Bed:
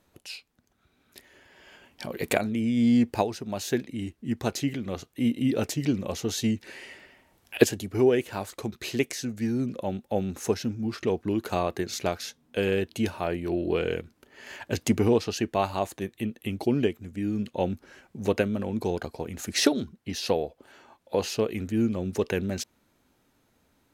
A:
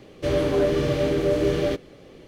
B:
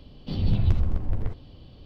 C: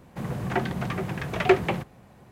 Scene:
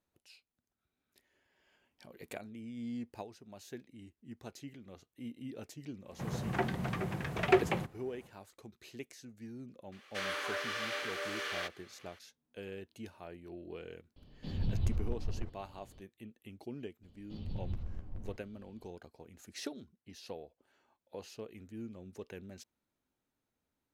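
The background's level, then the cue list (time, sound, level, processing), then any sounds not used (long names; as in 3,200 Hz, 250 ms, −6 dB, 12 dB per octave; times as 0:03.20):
bed −19.5 dB
0:06.03: mix in C −6.5 dB, fades 0.10 s
0:09.92: mix in A −5 dB + high-pass with resonance 1,400 Hz, resonance Q 1.8
0:14.16: mix in B −11 dB
0:17.03: mix in B −17.5 dB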